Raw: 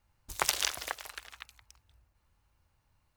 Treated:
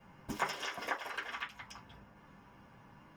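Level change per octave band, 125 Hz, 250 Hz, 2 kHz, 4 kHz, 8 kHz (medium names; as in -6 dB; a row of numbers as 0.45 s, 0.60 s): +2.5 dB, +9.0 dB, 0.0 dB, -9.0 dB, -16.0 dB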